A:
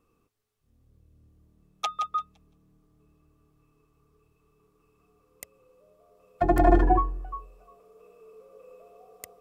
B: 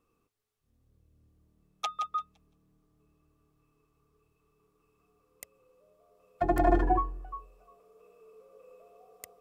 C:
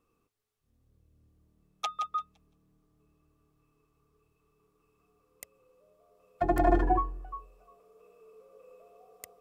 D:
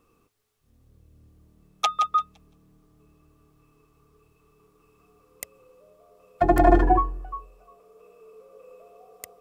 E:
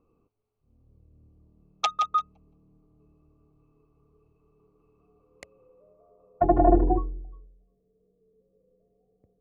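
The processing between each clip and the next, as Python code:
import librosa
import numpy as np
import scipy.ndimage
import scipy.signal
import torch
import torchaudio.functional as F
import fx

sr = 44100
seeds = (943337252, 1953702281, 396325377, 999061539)

y1 = fx.low_shelf(x, sr, hz=350.0, db=-3.0)
y1 = F.gain(torch.from_numpy(y1), -3.5).numpy()
y2 = y1
y3 = fx.rider(y2, sr, range_db=10, speed_s=2.0)
y3 = F.gain(torch.from_numpy(y3), 7.0).numpy()
y4 = fx.wiener(y3, sr, points=25)
y4 = fx.filter_sweep_lowpass(y4, sr, from_hz=5900.0, to_hz=190.0, start_s=5.08, end_s=7.61, q=1.0)
y4 = F.gain(torch.from_numpy(y4), -2.0).numpy()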